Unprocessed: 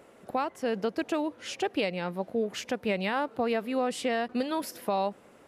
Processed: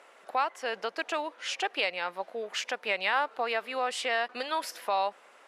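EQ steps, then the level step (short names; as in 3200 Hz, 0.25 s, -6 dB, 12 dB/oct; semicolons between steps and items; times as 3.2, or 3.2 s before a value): HPF 910 Hz 12 dB/oct; LPF 12000 Hz 12 dB/oct; high shelf 7200 Hz -9 dB; +6.0 dB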